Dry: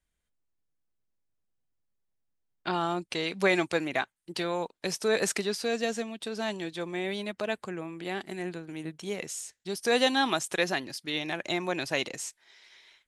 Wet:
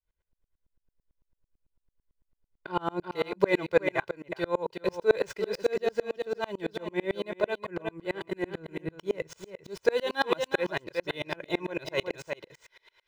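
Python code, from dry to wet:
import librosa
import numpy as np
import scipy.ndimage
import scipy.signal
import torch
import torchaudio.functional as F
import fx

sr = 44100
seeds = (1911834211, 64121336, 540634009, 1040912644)

p1 = scipy.signal.medfilt(x, 5)
p2 = p1 + 0.76 * np.pad(p1, (int(2.0 * sr / 1000.0), 0))[:len(p1)]
p3 = fx.rider(p2, sr, range_db=3, speed_s=2.0)
p4 = p2 + F.gain(torch.from_numpy(p3), -2.0).numpy()
p5 = fx.high_shelf(p4, sr, hz=2700.0, db=-11.0)
p6 = p5 + fx.echo_single(p5, sr, ms=365, db=-8.5, dry=0)
p7 = fx.tremolo_decay(p6, sr, direction='swelling', hz=9.0, depth_db=33)
y = F.gain(torch.from_numpy(p7), 2.5).numpy()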